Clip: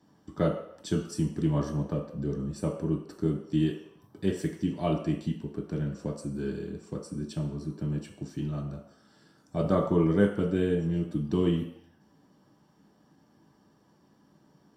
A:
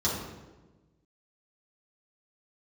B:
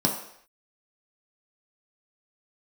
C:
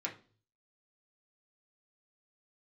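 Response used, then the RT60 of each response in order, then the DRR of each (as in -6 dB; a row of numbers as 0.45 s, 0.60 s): B; 1.2 s, no single decay rate, 0.40 s; -8.5 dB, -1.0 dB, -3.0 dB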